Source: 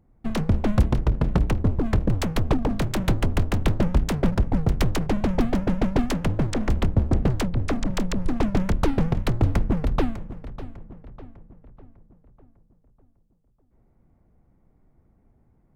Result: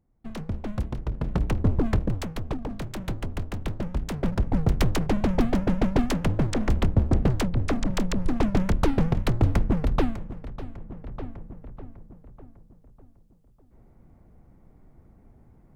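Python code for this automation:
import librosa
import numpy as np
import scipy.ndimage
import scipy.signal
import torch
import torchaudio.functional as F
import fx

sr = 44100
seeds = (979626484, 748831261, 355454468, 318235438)

y = fx.gain(x, sr, db=fx.line((0.96, -10.0), (1.78, 1.0), (2.37, -9.0), (3.89, -9.0), (4.62, -0.5), (10.65, -0.5), (11.2, 7.0)))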